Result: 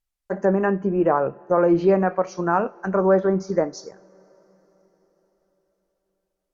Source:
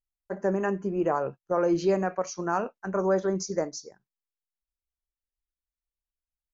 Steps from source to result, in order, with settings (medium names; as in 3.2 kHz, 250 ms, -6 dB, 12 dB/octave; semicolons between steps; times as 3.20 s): low-pass that closes with the level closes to 2.2 kHz, closed at -25.5 dBFS; two-slope reverb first 0.39 s, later 4.8 s, from -18 dB, DRR 18.5 dB; trim +7 dB